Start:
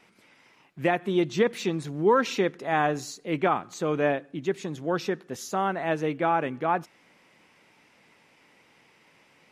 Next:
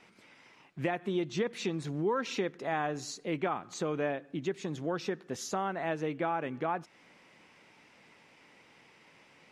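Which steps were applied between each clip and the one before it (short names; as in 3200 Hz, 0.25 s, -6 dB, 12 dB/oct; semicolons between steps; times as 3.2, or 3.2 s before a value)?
compressor 2.5:1, threshold -32 dBFS, peak gain reduction 11 dB; LPF 8900 Hz 12 dB/oct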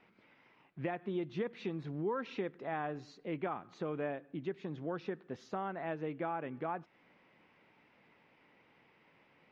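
air absorption 290 m; gain -4.5 dB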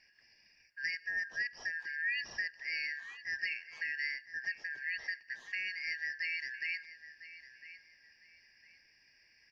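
four-band scrambler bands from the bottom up 3142; feedback echo 1.004 s, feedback 26%, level -15 dB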